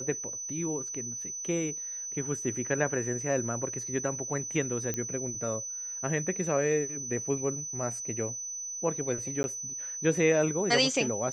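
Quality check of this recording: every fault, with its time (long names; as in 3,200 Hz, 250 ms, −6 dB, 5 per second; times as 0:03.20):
whistle 6,000 Hz −35 dBFS
0:04.94: click −17 dBFS
0:09.43–0:09.44: drop-out 11 ms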